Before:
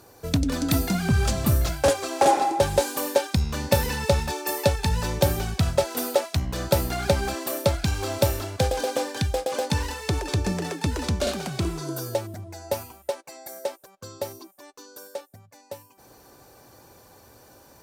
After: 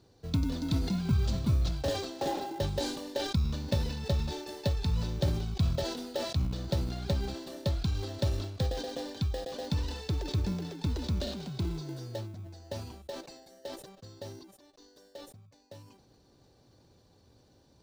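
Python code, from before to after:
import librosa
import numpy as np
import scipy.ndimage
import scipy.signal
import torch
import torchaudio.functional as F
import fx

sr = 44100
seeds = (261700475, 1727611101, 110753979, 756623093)

p1 = fx.curve_eq(x, sr, hz=(180.0, 2000.0, 3900.0, 14000.0), db=(0, -14, 1, -25))
p2 = fx.sample_hold(p1, sr, seeds[0], rate_hz=1200.0, jitter_pct=0)
p3 = p1 + (p2 * librosa.db_to_amplitude(-9.0))
p4 = fx.sustainer(p3, sr, db_per_s=57.0)
y = p4 * librosa.db_to_amplitude(-8.0)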